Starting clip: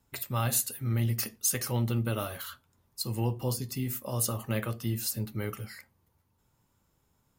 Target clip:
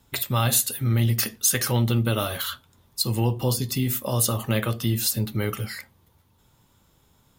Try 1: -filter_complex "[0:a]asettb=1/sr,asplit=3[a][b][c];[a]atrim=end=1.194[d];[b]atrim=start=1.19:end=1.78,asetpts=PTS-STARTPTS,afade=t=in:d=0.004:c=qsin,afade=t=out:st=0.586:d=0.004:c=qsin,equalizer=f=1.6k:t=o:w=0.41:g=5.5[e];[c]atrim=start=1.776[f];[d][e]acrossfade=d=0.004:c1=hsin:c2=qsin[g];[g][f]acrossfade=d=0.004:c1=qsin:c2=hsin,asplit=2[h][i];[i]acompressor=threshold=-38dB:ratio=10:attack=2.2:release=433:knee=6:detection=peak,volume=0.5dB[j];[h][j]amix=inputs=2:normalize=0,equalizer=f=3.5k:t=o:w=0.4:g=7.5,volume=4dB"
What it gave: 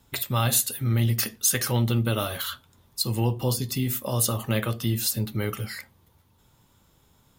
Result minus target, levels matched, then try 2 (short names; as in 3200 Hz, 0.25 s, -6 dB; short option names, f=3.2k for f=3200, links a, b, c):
compressor: peak gain reduction +7 dB
-filter_complex "[0:a]asettb=1/sr,asplit=3[a][b][c];[a]atrim=end=1.194[d];[b]atrim=start=1.19:end=1.78,asetpts=PTS-STARTPTS,afade=t=in:d=0.004:c=qsin,afade=t=out:st=0.586:d=0.004:c=qsin,equalizer=f=1.6k:t=o:w=0.41:g=5.5[e];[c]atrim=start=1.776[f];[d][e]acrossfade=d=0.004:c1=hsin:c2=qsin[g];[g][f]acrossfade=d=0.004:c1=qsin:c2=hsin,asplit=2[h][i];[i]acompressor=threshold=-30.5dB:ratio=10:attack=2.2:release=433:knee=6:detection=peak,volume=0.5dB[j];[h][j]amix=inputs=2:normalize=0,equalizer=f=3.5k:t=o:w=0.4:g=7.5,volume=4dB"